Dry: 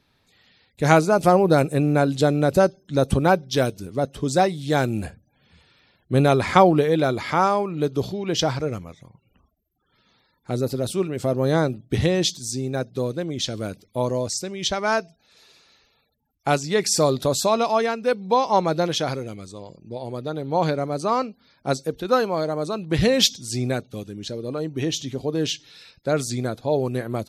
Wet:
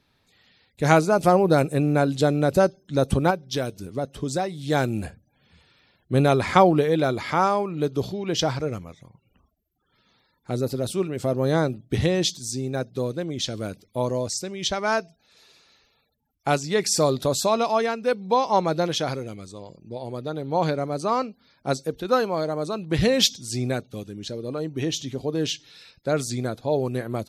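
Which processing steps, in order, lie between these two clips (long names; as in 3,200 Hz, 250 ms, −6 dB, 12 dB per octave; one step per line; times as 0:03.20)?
0:03.30–0:04.64: downward compressor 2.5 to 1, threshold −23 dBFS, peak gain reduction 7.5 dB
level −1.5 dB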